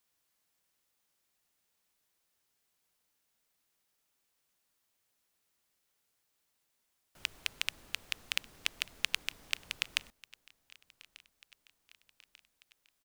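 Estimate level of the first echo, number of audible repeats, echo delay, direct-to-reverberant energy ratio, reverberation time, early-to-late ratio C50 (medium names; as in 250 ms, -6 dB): -23.5 dB, 3, 1191 ms, no reverb, no reverb, no reverb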